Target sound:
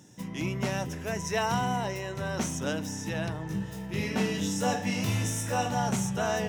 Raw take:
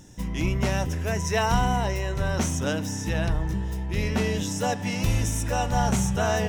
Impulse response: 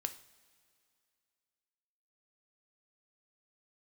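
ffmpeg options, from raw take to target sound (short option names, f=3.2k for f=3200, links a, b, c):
-filter_complex "[0:a]highpass=f=110:w=0.5412,highpass=f=110:w=1.3066,asettb=1/sr,asplit=3[a][b][c];[a]atrim=end=3.474[d];[b]atrim=start=3.47:end=5.75,asetpts=PTS-STARTPTS,afade=t=in:d=0.004:c=qsin,afade=t=out:st=2.276:d=0.004:c=qsin,aecho=1:1:20|45|76.25|115.3|164.1:0.631|0.398|0.251|0.158|0.1,atrim=end_sample=100548[e];[c]atrim=start=5.746[f];[d][e]acrossfade=d=0.004:c1=hsin:c2=qsin[g];[g][f]acrossfade=d=0.004:c1=qsin:c2=hsin,volume=-4dB"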